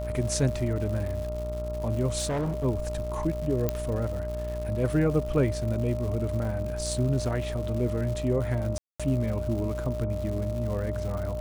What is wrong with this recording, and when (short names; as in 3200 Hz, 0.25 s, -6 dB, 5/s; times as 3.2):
buzz 60 Hz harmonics 23 -34 dBFS
crackle 210/s -35 dBFS
tone 610 Hz -33 dBFS
2.18–2.65 clipped -25 dBFS
3.69 pop -12 dBFS
8.78–9 gap 0.216 s